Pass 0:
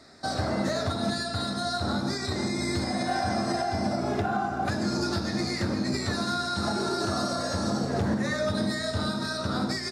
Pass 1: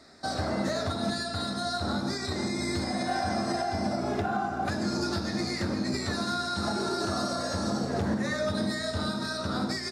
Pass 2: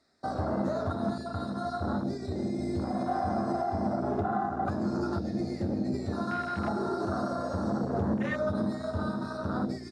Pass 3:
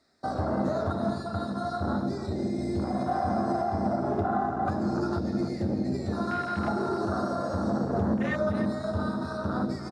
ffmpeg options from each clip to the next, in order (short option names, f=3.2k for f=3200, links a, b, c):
-af "equalizer=f=120:w=6.6:g=-7.5,volume=-1.5dB"
-af "afwtdn=0.0251"
-filter_complex "[0:a]asplit=2[a][b];[b]adelay=297.4,volume=-10dB,highshelf=f=4k:g=-6.69[c];[a][c]amix=inputs=2:normalize=0,volume=2dB"